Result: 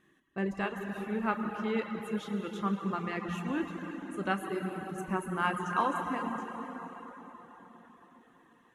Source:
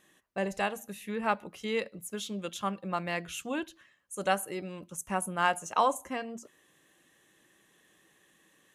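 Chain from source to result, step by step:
drawn EQ curve 380 Hz 0 dB, 550 Hz −12 dB, 1,300 Hz −3 dB, 7,900 Hz −18 dB
dense smooth reverb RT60 4.7 s, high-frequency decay 0.7×, DRR 0.5 dB
reverb reduction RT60 0.53 s
level +2.5 dB

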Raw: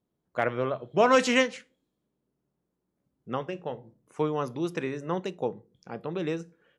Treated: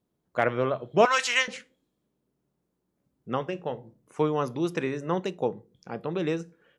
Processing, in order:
0:01.05–0:01.48: high-pass filter 1,200 Hz 12 dB per octave
level +2.5 dB

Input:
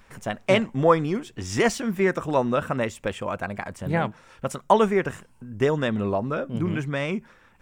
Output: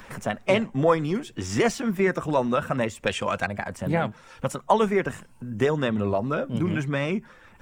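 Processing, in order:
spectral magnitudes quantised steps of 15 dB
0:03.06–0:03.47: parametric band 5,000 Hz +13 dB 2.5 octaves
multiband upward and downward compressor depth 40%

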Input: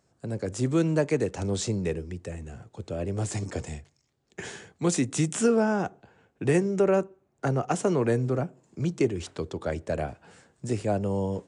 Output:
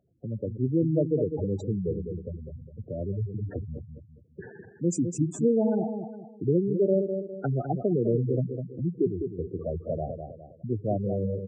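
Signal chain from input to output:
loose part that buzzes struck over −34 dBFS, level −33 dBFS
low-pass that shuts in the quiet parts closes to 1,600 Hz, open at −20.5 dBFS
parametric band 2,700 Hz −4.5 dB 2.9 octaves
on a send: repeating echo 204 ms, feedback 38%, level −7 dB
on the sum: gate on every frequency bin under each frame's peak −10 dB strong

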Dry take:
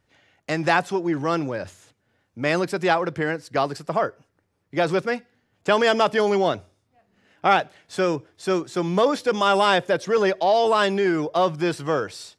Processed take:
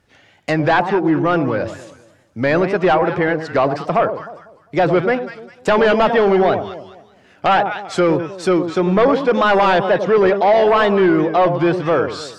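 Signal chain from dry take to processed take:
delay that swaps between a low-pass and a high-pass 100 ms, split 890 Hz, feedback 54%, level −9 dB
in parallel at −3 dB: sine wavefolder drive 10 dB, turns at −4 dBFS
on the sum: tape wow and flutter 93 cents
treble cut that deepens with the level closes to 2,500 Hz, closed at −9 dBFS
level −4.5 dB

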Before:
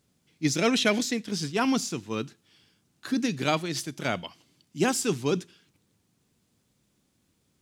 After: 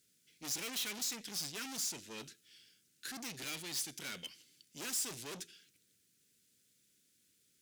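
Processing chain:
flat-topped bell 860 Hz −16 dB 1.1 octaves
tube saturation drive 37 dB, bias 0.35
spectral tilt +3 dB per octave
level −4.5 dB

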